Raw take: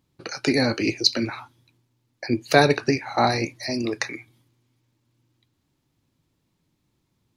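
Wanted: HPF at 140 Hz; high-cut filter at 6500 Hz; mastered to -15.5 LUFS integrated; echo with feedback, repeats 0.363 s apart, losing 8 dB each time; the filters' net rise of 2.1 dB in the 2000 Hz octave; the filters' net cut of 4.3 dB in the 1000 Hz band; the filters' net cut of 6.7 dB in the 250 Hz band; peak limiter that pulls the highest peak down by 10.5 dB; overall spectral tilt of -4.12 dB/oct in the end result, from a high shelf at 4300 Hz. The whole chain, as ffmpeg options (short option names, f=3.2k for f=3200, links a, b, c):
-af "highpass=140,lowpass=6.5k,equalizer=f=250:t=o:g=-7.5,equalizer=f=1k:t=o:g=-7,equalizer=f=2k:t=o:g=6.5,highshelf=f=4.3k:g=-7,alimiter=limit=-14dB:level=0:latency=1,aecho=1:1:363|726|1089|1452|1815:0.398|0.159|0.0637|0.0255|0.0102,volume=12.5dB"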